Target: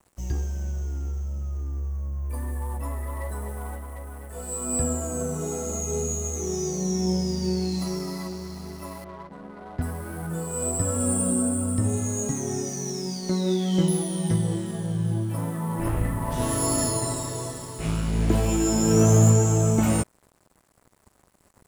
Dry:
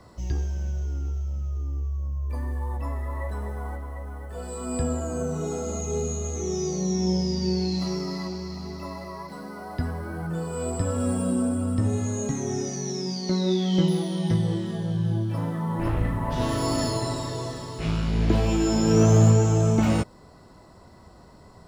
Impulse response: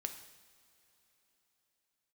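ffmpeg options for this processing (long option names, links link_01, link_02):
-filter_complex "[0:a]highshelf=frequency=6700:width_type=q:width=1.5:gain=12.5,aeval=exprs='sgn(val(0))*max(abs(val(0))-0.00473,0)':channel_layout=same,asettb=1/sr,asplit=3[link_01][link_02][link_03];[link_01]atrim=end=9.044[link_04];[link_02]atrim=start=9.04:end=9.82,asetpts=PTS-STARTPTS,afade=type=in:duration=0.004:curve=qsin,afade=type=out:start_time=0.776:duration=0.004:curve=qsin,adynamicsmooth=sensitivity=7:basefreq=950[link_05];[link_03]atrim=start=9.816[link_06];[link_04][link_05]acrossfade=duration=0.004:curve1=hsin:curve2=qsin[link_07];[link_07][link_06]acrossfade=duration=0.004:curve1=qsin:curve2=hsin"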